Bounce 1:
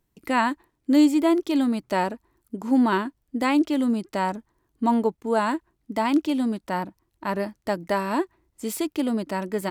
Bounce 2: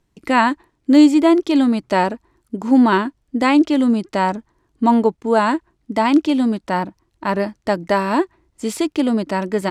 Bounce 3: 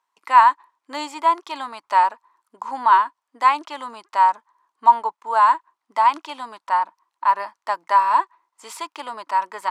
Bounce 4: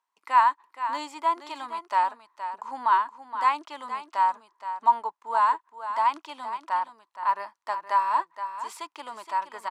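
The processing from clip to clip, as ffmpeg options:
-af "lowpass=7.8k,volume=7dB"
-af "highpass=f=1k:t=q:w=5.8,volume=-7dB"
-af "aecho=1:1:470:0.299,volume=-7dB"

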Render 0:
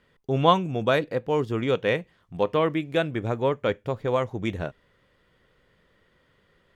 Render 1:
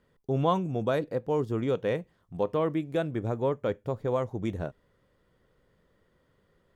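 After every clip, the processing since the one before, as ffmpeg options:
-filter_complex "[0:a]equalizer=f=2.6k:w=0.7:g=-9.5,asplit=2[a][b];[b]alimiter=limit=-16.5dB:level=0:latency=1,volume=1dB[c];[a][c]amix=inputs=2:normalize=0,volume=-8.5dB"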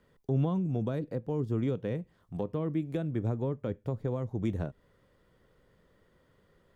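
-filter_complex "[0:a]acrossover=split=300[a][b];[b]acompressor=threshold=-39dB:ratio=10[c];[a][c]amix=inputs=2:normalize=0,volume=2dB"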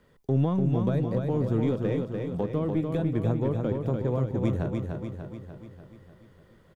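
-filter_complex "[0:a]asplit=2[a][b];[b]aeval=exprs='clip(val(0),-1,0.0188)':c=same,volume=-3.5dB[c];[a][c]amix=inputs=2:normalize=0,aecho=1:1:295|590|885|1180|1475|1770|2065|2360:0.596|0.334|0.187|0.105|0.0586|0.0328|0.0184|0.0103"

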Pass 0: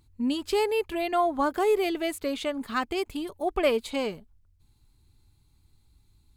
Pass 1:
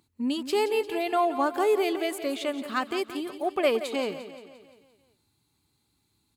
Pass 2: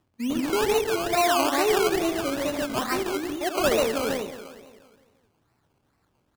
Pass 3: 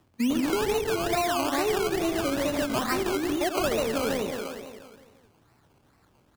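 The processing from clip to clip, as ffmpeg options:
-filter_complex "[0:a]highpass=190,asplit=2[a][b];[b]aecho=0:1:174|348|522|696|870|1044:0.251|0.133|0.0706|0.0374|0.0198|0.0105[c];[a][c]amix=inputs=2:normalize=0"
-af "aecho=1:1:75.8|139.9:0.398|0.891,acrusher=samples=19:mix=1:aa=0.000001:lfo=1:lforange=11.4:lforate=2.3"
-filter_complex "[0:a]acrossover=split=190[a][b];[a]alimiter=level_in=15.5dB:limit=-24dB:level=0:latency=1,volume=-15.5dB[c];[b]acompressor=threshold=-31dB:ratio=6[d];[c][d]amix=inputs=2:normalize=0,volume=7dB"

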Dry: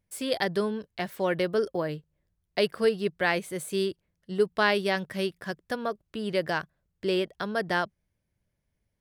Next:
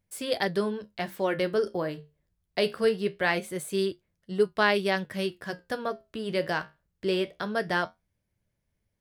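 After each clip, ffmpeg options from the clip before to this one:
-af "flanger=delay=9.2:depth=7.6:regen=-65:speed=0.23:shape=sinusoidal,volume=4dB"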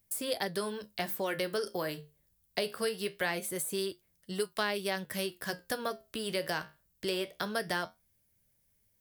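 -filter_complex "[0:a]aemphasis=mode=production:type=75fm,acrossover=split=530|1400[a][b][c];[a]acompressor=threshold=-38dB:ratio=4[d];[b]acompressor=threshold=-36dB:ratio=4[e];[c]acompressor=threshold=-36dB:ratio=4[f];[d][e][f]amix=inputs=3:normalize=0"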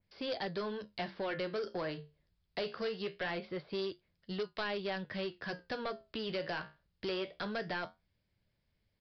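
-af "aresample=11025,asoftclip=type=tanh:threshold=-31dB,aresample=44100,adynamicequalizer=threshold=0.00251:dfrequency=2700:dqfactor=0.7:tfrequency=2700:tqfactor=0.7:attack=5:release=100:ratio=0.375:range=2:mode=cutabove:tftype=highshelf"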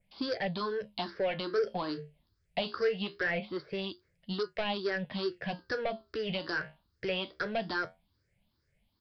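-af "afftfilt=real='re*pow(10,16/40*sin(2*PI*(0.51*log(max(b,1)*sr/1024/100)/log(2)-(2.4)*(pts-256)/sr)))':imag='im*pow(10,16/40*sin(2*PI*(0.51*log(max(b,1)*sr/1024/100)/log(2)-(2.4)*(pts-256)/sr)))':win_size=1024:overlap=0.75,volume=1.5dB"

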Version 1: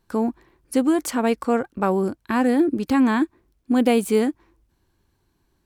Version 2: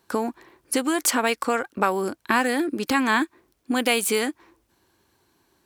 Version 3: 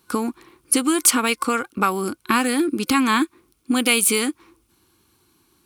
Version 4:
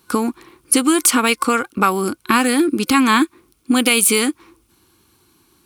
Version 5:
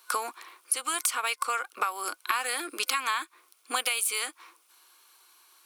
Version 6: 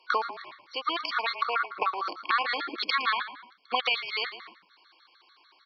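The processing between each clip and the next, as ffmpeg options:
-filter_complex "[0:a]highpass=74,bass=f=250:g=-10,treble=f=4k:g=1,acrossover=split=1200[a][b];[a]acompressor=threshold=-30dB:ratio=6[c];[c][b]amix=inputs=2:normalize=0,volume=7.5dB"
-af "superequalizer=7b=0.562:8b=0.282:9b=0.501:11b=0.447:16b=1.78,volume=4.5dB"
-af "alimiter=level_in=5.5dB:limit=-1dB:release=50:level=0:latency=1,volume=-1dB"
-af "highpass=f=620:w=0.5412,highpass=f=620:w=1.3066,acompressor=threshold=-25dB:ratio=8,bandreject=f=830:w=12"
-filter_complex "[0:a]asplit=4[a][b][c][d];[b]adelay=113,afreqshift=-40,volume=-12dB[e];[c]adelay=226,afreqshift=-80,volume=-21.4dB[f];[d]adelay=339,afreqshift=-120,volume=-30.7dB[g];[a][e][f][g]amix=inputs=4:normalize=0,aresample=11025,aresample=44100,afftfilt=real='re*gt(sin(2*PI*6.7*pts/sr)*(1-2*mod(floor(b*sr/1024/1100),2)),0)':imag='im*gt(sin(2*PI*6.7*pts/sr)*(1-2*mod(floor(b*sr/1024/1100),2)),0)':win_size=1024:overlap=0.75,volume=5.5dB"

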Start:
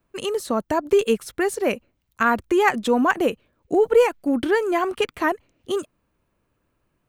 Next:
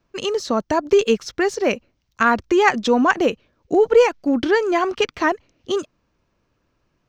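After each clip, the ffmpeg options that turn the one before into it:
-af "highshelf=f=7.6k:t=q:w=3:g=-11.5,volume=2.5dB"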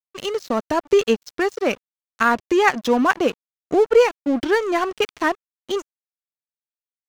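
-af "aeval=exprs='sgn(val(0))*max(abs(val(0))-0.0299,0)':c=same"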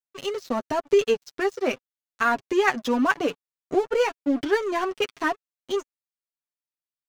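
-af "flanger=delay=6.8:depth=1.2:regen=6:speed=0.92:shape=triangular,volume=-1.5dB"

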